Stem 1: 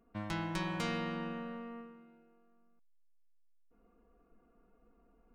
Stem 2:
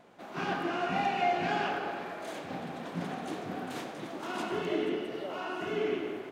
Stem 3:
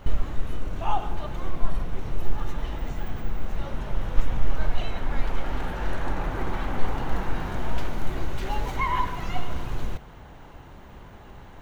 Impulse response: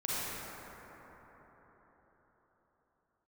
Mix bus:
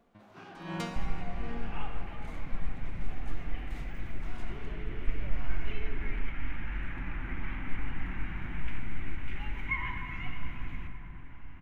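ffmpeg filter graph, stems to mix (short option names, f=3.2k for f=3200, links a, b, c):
-filter_complex "[0:a]aeval=exprs='val(0)*pow(10,-39*(0.5-0.5*cos(2*PI*1.3*n/s))/20)':c=same,volume=-0.5dB,asplit=2[a][b];[b]volume=-8dB[c];[1:a]alimiter=level_in=2.5dB:limit=-24dB:level=0:latency=1:release=57,volume=-2.5dB,volume=-13.5dB[d];[2:a]firequalizer=gain_entry='entry(300,0);entry(440,-15);entry(2200,10);entry(4200,-15)':delay=0.05:min_phase=1,adelay=900,volume=-11dB,asplit=2[e][f];[f]volume=-10.5dB[g];[3:a]atrim=start_sample=2205[h];[c][g]amix=inputs=2:normalize=0[i];[i][h]afir=irnorm=-1:irlink=0[j];[a][d][e][j]amix=inputs=4:normalize=0"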